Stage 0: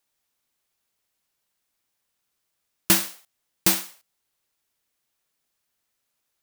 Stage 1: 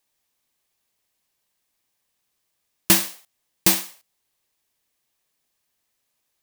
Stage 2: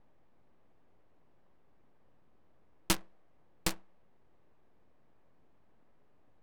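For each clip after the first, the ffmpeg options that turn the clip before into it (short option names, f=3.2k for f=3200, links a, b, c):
-af "bandreject=f=1.4k:w=8.3,volume=2.5dB"
-af "aeval=exprs='val(0)+0.5*0.0841*sgn(val(0))':c=same,aeval=exprs='0.944*(cos(1*acos(clip(val(0)/0.944,-1,1)))-cos(1*PI/2))+0.299*(cos(3*acos(clip(val(0)/0.944,-1,1)))-cos(3*PI/2))+0.0944*(cos(4*acos(clip(val(0)/0.944,-1,1)))-cos(4*PI/2))':c=same,adynamicsmooth=sensitivity=5:basefreq=700,volume=-3.5dB"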